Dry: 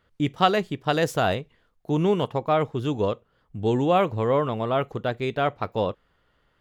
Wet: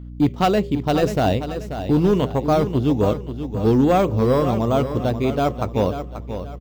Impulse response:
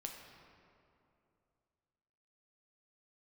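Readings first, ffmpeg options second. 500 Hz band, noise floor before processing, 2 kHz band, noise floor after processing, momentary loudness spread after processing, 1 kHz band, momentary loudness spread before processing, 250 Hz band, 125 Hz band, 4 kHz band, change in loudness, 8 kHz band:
+4.0 dB, -68 dBFS, -1.0 dB, -34 dBFS, 10 LU, +2.0 dB, 8 LU, +8.0 dB, +7.0 dB, 0.0 dB, +4.5 dB, no reading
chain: -filter_complex "[0:a]asplit=2[s0][s1];[s1]acrusher=samples=8:mix=1:aa=0.000001:lfo=1:lforange=4.8:lforate=1.2,volume=0.355[s2];[s0][s2]amix=inputs=2:normalize=0,equalizer=f=100:t=o:w=0.67:g=5,equalizer=f=250:t=o:w=0.67:g=7,equalizer=f=1600:t=o:w=0.67:g=-7,equalizer=f=10000:t=o:w=0.67:g=-9,aeval=exprs='0.708*(cos(1*acos(clip(val(0)/0.708,-1,1)))-cos(1*PI/2))+0.0282*(cos(5*acos(clip(val(0)/0.708,-1,1)))-cos(5*PI/2))':c=same,volume=3.35,asoftclip=hard,volume=0.299,bandreject=f=80.46:t=h:w=4,bandreject=f=160.92:t=h:w=4,bandreject=f=241.38:t=h:w=4,bandreject=f=321.84:t=h:w=4,bandreject=f=402.3:t=h:w=4,bandreject=f=482.76:t=h:w=4,bandreject=f=563.22:t=h:w=4,aeval=exprs='val(0)+0.02*(sin(2*PI*60*n/s)+sin(2*PI*2*60*n/s)/2+sin(2*PI*3*60*n/s)/3+sin(2*PI*4*60*n/s)/4+sin(2*PI*5*60*n/s)/5)':c=same,asplit=2[s3][s4];[s4]aecho=0:1:535|1070|1605|2140:0.316|0.114|0.041|0.0148[s5];[s3][s5]amix=inputs=2:normalize=0"

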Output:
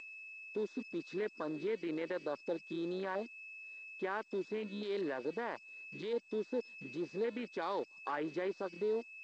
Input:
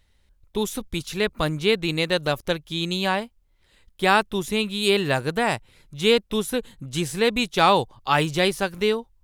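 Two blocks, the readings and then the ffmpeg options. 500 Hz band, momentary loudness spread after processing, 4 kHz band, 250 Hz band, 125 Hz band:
-13.5 dB, 8 LU, -28.0 dB, -14.5 dB, -23.5 dB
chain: -filter_complex "[0:a]afwtdn=0.0501,bandreject=f=1300:w=16,aeval=exprs='val(0)+0.0112*sin(2*PI*2600*n/s)':c=same,equalizer=f=2400:w=0.54:g=-2.5,acompressor=threshold=0.0251:ratio=8,alimiter=level_in=2.37:limit=0.0631:level=0:latency=1:release=13,volume=0.422,aeval=exprs='sgn(val(0))*max(abs(val(0))-0.001,0)':c=same,aeval=exprs='0.0266*(cos(1*acos(clip(val(0)/0.0266,-1,1)))-cos(1*PI/2))+0.000335*(cos(4*acos(clip(val(0)/0.0266,-1,1)))-cos(4*PI/2))':c=same,acrossover=split=2600[s0][s1];[s1]acompressor=threshold=0.00141:ratio=4:attack=1:release=60[s2];[s0][s2]amix=inputs=2:normalize=0,highpass=f=270:w=0.5412,highpass=f=270:w=1.3066,equalizer=f=750:t=q:w=4:g=-6,equalizer=f=2700:t=q:w=4:g=-10,equalizer=f=4700:t=q:w=4:g=6,lowpass=f=5300:w=0.5412,lowpass=f=5300:w=1.3066,volume=2.11" -ar 16000 -c:a g722

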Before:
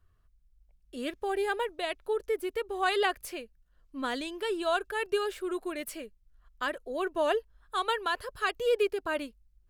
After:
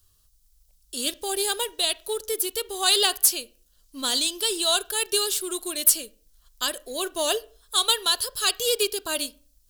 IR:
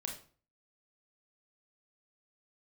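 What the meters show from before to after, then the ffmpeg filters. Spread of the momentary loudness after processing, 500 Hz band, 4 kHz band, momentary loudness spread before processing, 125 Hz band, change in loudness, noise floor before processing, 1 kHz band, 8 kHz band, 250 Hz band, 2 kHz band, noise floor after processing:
10 LU, +0.5 dB, +16.0 dB, 11 LU, no reading, +8.0 dB, -66 dBFS, 0.0 dB, +25.0 dB, +0.5 dB, +1.0 dB, -63 dBFS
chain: -filter_complex "[0:a]aexciter=amount=11.3:drive=7.1:freq=3200,acrusher=bits=5:mode=log:mix=0:aa=0.000001,asplit=2[s0][s1];[1:a]atrim=start_sample=2205,lowpass=2500[s2];[s1][s2]afir=irnorm=-1:irlink=0,volume=0.251[s3];[s0][s3]amix=inputs=2:normalize=0,volume=0.891"

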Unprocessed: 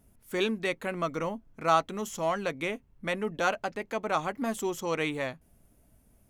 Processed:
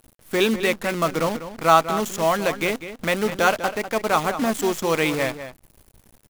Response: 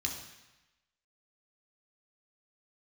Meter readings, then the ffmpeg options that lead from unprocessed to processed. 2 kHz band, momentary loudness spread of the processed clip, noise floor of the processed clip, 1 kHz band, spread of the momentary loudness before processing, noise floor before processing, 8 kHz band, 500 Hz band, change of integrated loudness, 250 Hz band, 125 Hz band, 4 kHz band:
+9.0 dB, 8 LU, -58 dBFS, +9.0 dB, 9 LU, -64 dBFS, +11.0 dB, +9.0 dB, +9.0 dB, +9.0 dB, +9.0 dB, +10.0 dB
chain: -filter_complex "[0:a]acrusher=bits=7:dc=4:mix=0:aa=0.000001,asplit=2[s0][s1];[s1]adelay=198.3,volume=0.282,highshelf=f=4000:g=-4.46[s2];[s0][s2]amix=inputs=2:normalize=0,volume=2.66"

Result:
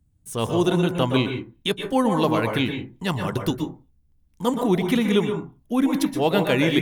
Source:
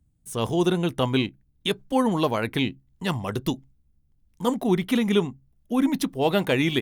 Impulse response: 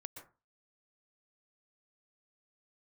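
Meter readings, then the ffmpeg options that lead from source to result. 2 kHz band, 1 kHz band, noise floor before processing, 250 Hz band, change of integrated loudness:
+2.5 dB, +2.5 dB, -66 dBFS, +2.0 dB, +2.0 dB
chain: -filter_complex "[1:a]atrim=start_sample=2205[s0];[0:a][s0]afir=irnorm=-1:irlink=0,volume=2.24"

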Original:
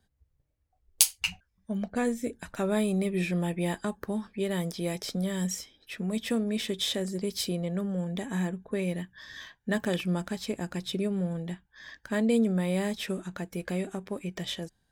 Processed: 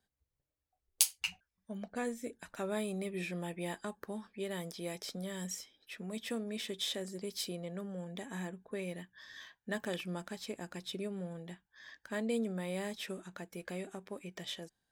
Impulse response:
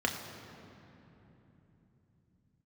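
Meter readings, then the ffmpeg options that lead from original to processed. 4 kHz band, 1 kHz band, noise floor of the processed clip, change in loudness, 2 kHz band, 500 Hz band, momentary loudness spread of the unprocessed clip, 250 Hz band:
-6.5 dB, -7.0 dB, under -85 dBFS, -9.0 dB, -6.5 dB, -8.0 dB, 11 LU, -11.5 dB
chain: -af "lowshelf=f=180:g=-11.5,volume=0.473"

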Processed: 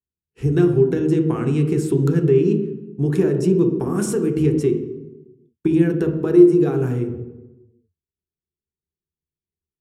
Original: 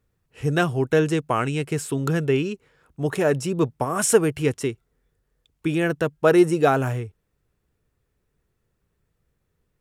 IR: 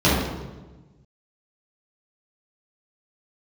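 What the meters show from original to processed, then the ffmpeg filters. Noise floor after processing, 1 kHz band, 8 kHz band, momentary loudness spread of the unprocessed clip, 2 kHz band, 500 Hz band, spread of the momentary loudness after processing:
under -85 dBFS, -9.5 dB, -7.5 dB, 11 LU, -9.0 dB, +3.5 dB, 11 LU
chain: -filter_complex "[0:a]agate=range=0.0224:threshold=0.00708:ratio=3:detection=peak,acompressor=threshold=0.0562:ratio=6,lowshelf=f=490:t=q:w=3:g=6,asoftclip=type=tanh:threshold=0.668,asplit=2[s0][s1];[1:a]atrim=start_sample=2205,asetrate=52920,aresample=44100[s2];[s1][s2]afir=irnorm=-1:irlink=0,volume=0.0596[s3];[s0][s3]amix=inputs=2:normalize=0,volume=0.794"

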